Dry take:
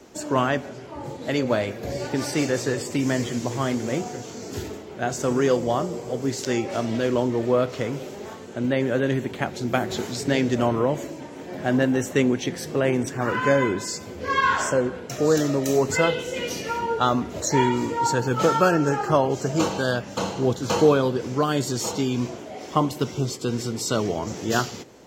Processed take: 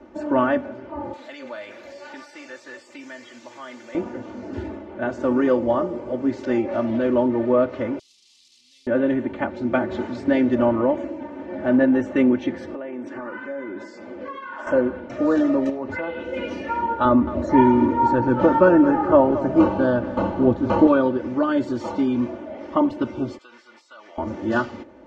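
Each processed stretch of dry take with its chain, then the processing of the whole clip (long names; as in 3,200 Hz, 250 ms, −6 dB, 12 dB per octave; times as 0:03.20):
0:01.13–0:03.95: first difference + envelope flattener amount 70%
0:07.99–0:08.87: linear delta modulator 64 kbit/s, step −22 dBFS + inverse Chebyshev high-pass filter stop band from 1,700 Hz, stop band 50 dB
0:12.73–0:14.67: high-pass filter 230 Hz + downward compressor 12 to 1, threshold −30 dBFS
0:15.69–0:16.33: low-pass filter 4,900 Hz + downward compressor 4 to 1, threshold −26 dBFS + highs frequency-modulated by the lows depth 0.12 ms
0:17.05–0:20.87: spectral tilt −2 dB per octave + feedback echo at a low word length 220 ms, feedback 55%, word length 6 bits, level −12.5 dB
0:23.38–0:24.18: high-pass filter 1,400 Hz + downward compressor, threshold −39 dBFS
whole clip: low-pass filter 1,700 Hz 12 dB per octave; comb filter 3.4 ms, depth 93%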